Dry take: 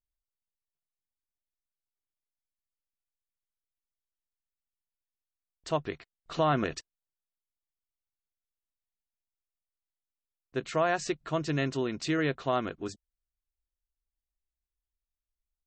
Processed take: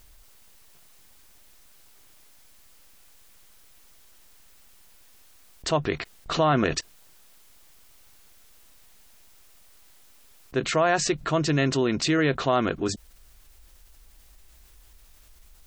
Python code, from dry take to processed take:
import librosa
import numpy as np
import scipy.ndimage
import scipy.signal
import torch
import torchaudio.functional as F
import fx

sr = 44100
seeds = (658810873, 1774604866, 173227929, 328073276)

y = fx.env_flatten(x, sr, amount_pct=50)
y = y * librosa.db_to_amplitude(4.0)